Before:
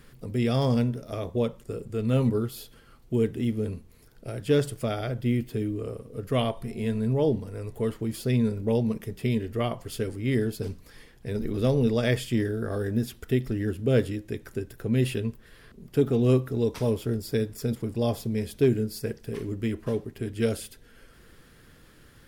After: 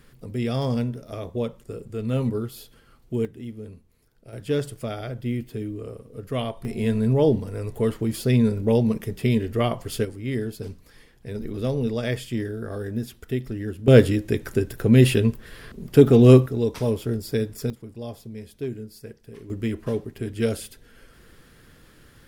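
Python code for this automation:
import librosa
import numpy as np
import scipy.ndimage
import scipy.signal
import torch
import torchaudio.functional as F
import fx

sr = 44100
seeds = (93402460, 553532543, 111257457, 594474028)

y = fx.gain(x, sr, db=fx.steps((0.0, -1.0), (3.25, -9.0), (4.33, -2.0), (6.65, 5.0), (10.05, -2.0), (13.88, 9.5), (16.46, 2.0), (17.7, -9.0), (19.5, 2.0)))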